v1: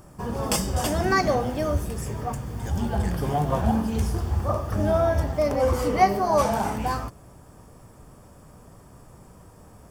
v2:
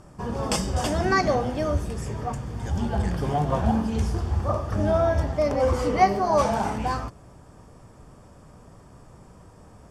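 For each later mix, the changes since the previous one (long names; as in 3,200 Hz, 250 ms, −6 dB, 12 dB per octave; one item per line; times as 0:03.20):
master: add low-pass filter 7,600 Hz 12 dB per octave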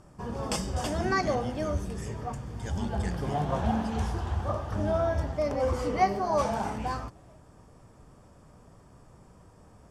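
first sound −5.5 dB
second sound +6.0 dB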